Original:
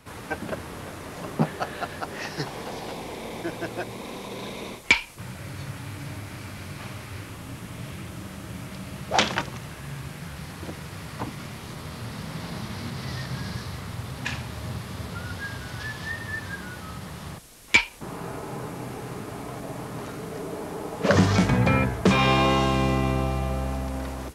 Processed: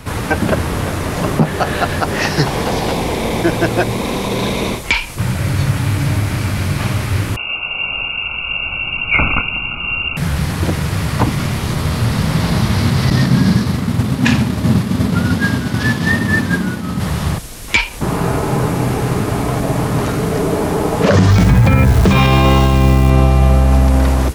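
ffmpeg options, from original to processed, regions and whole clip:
-filter_complex "[0:a]asettb=1/sr,asplit=3[s0][s1][s2];[s0]atrim=end=7.364[s3];[s1]atrim=start=7.36:end=10.17,asetpts=PTS-STARTPTS,afade=t=in:d=0.004:c=qsin,afade=t=out:st=2.806:d=0.004:c=qsin,lowpass=f=2500:t=q:w=0.5098,lowpass=f=2500:t=q:w=0.6013,lowpass=f=2500:t=q:w=0.9,lowpass=f=2500:t=q:w=2.563,afreqshift=-2900,asubboost=boost=9.5:cutoff=200,asuperstop=centerf=1800:order=12:qfactor=2.8[s4];[s2]atrim=start=10.166[s5];[s3][s4]acrossfade=d=0.004:c1=hsin:c2=qsin[s6];[s6][s5]acrossfade=d=0.004:c1=qsin:c2=hsin,asettb=1/sr,asplit=3[s7][s8][s9];[s7]atrim=end=13.104[s10];[s8]atrim=start=13.1:end=17,asetpts=PTS-STARTPTS,afade=t=in:d=0.004:c=qsin,afade=t=out:st=3.896:d=0.004:c=qsin,highpass=f=130:p=1,agate=range=0.0224:threshold=0.02:ratio=3:release=100:detection=peak,equalizer=f=230:w=1.3:g=13[s11];[s9]atrim=start=16.996[s12];[s10][s11]acrossfade=d=0.004:c1=hsin:c2=qsin[s13];[s13][s12]acrossfade=d=0.004:c1=qsin:c2=hsin,asettb=1/sr,asplit=3[s14][s15][s16];[s14]atrim=end=21.304[s17];[s15]atrim=start=21.3:end=23.1,asetpts=PTS-STARTPTS,afade=t=in:d=0.004:c=qsin,afade=t=out:st=1.796:d=0.004:c=qsin,lowshelf=f=100:g=8.5,bandreject=f=61.88:t=h:w=4,bandreject=f=123.76:t=h:w=4,bandreject=f=185.64:t=h:w=4,bandreject=f=247.52:t=h:w=4,bandreject=f=309.4:t=h:w=4,bandreject=f=371.28:t=h:w=4,bandreject=f=433.16:t=h:w=4,bandreject=f=495.04:t=h:w=4,bandreject=f=556.92:t=h:w=4,bandreject=f=618.8:t=h:w=4,bandreject=f=680.68:t=h:w=4,bandreject=f=742.56:t=h:w=4,acrusher=bits=7:dc=4:mix=0:aa=0.000001[s18];[s16]atrim=start=23.096[s19];[s17][s18]acrossfade=d=0.004:c1=hsin:c2=qsin[s20];[s20][s19]acrossfade=d=0.004:c1=qsin:c2=hsin,lowshelf=f=130:g=9.5,acompressor=threshold=0.0708:ratio=2,alimiter=level_in=7.08:limit=0.891:release=50:level=0:latency=1,volume=0.891"

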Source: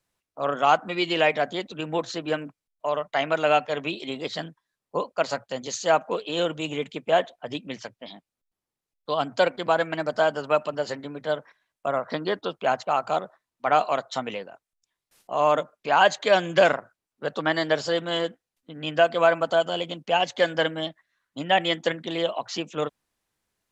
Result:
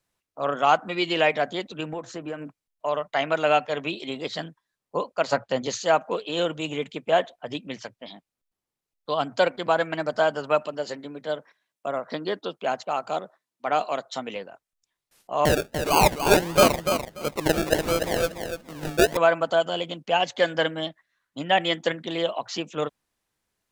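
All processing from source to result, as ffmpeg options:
-filter_complex "[0:a]asettb=1/sr,asplit=3[s0][s1][s2];[s0]atrim=end=1.934[s3];[s1]atrim=start=1.93:end=2.43,asetpts=PTS-STARTPTS,afade=t=in:d=0.004:c=qsin,afade=t=out:st=0.496:d=0.004:c=qsin,equalizer=f=3900:t=o:w=0.9:g=-13,acompressor=threshold=0.0355:ratio=4:attack=3.2:release=140:knee=1:detection=peak[s4];[s2]atrim=start=2.426[s5];[s3][s4]acrossfade=d=0.004:c1=hsin:c2=qsin[s6];[s6][s5]acrossfade=d=0.004:c1=qsin:c2=hsin,asettb=1/sr,asplit=3[s7][s8][s9];[s7]atrim=end=5.324[s10];[s8]atrim=start=5.32:end=5.83,asetpts=PTS-STARTPTS,afade=t=in:d=0.004:c=qsin,afade=t=out:st=0.506:d=0.004:c=qsin,aemphasis=mode=reproduction:type=50fm,acontrast=51[s11];[s9]atrim=start=5.826[s12];[s10][s11]acrossfade=d=0.004:c1=hsin:c2=qsin[s13];[s13][s12]acrossfade=d=0.004:c1=qsin:c2=hsin,asettb=1/sr,asplit=3[s14][s15][s16];[s14]atrim=end=10.664[s17];[s15]atrim=start=10.66:end=14.36,asetpts=PTS-STARTPTS,afade=t=in:d=0.004:c=qsin,afade=t=out:st=3.696:d=0.004:c=qsin,highpass=170,equalizer=f=1200:w=0.62:g=-4.5[s18];[s16]atrim=start=14.356[s19];[s17][s18]acrossfade=d=0.004:c1=hsin:c2=qsin[s20];[s20][s19]acrossfade=d=0.004:c1=qsin:c2=hsin,asettb=1/sr,asplit=3[s21][s22][s23];[s21]atrim=end=15.454[s24];[s22]atrim=start=15.45:end=19.17,asetpts=PTS-STARTPTS,afade=t=in:d=0.004:c=qsin,afade=t=out:st=3.716:d=0.004:c=qsin,acrusher=samples=34:mix=1:aa=0.000001:lfo=1:lforange=20.4:lforate=1.5,acompressor=mode=upward:threshold=0.0141:ratio=2.5:attack=3.2:release=140:knee=2.83:detection=peak,aecho=1:1:292|584|876:0.447|0.0759|0.0129,atrim=end_sample=164052[s25];[s23]atrim=start=19.166[s26];[s24][s25]acrossfade=d=0.004:c1=hsin:c2=qsin[s27];[s27][s26]acrossfade=d=0.004:c1=qsin:c2=hsin"

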